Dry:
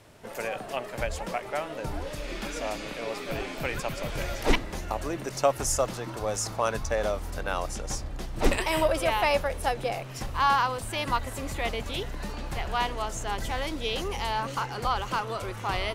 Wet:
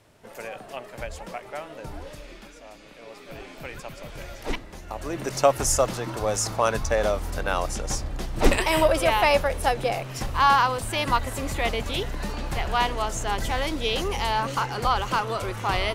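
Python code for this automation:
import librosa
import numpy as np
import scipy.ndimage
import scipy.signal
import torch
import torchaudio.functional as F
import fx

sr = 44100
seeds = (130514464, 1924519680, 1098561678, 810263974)

y = fx.gain(x, sr, db=fx.line((2.1, -4.0), (2.61, -14.0), (3.51, -6.5), (4.82, -6.5), (5.25, 4.5)))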